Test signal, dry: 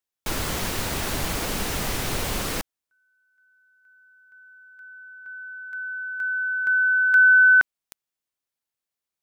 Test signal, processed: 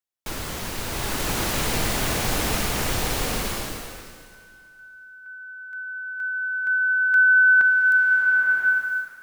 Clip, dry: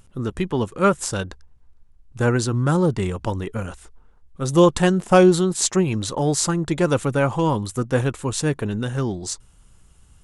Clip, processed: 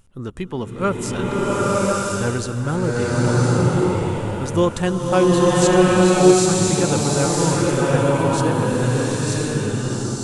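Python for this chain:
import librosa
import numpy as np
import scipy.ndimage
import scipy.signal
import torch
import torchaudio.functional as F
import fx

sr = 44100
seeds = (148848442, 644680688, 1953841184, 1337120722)

y = fx.rev_bloom(x, sr, seeds[0], attack_ms=1040, drr_db=-6.5)
y = F.gain(torch.from_numpy(y), -4.0).numpy()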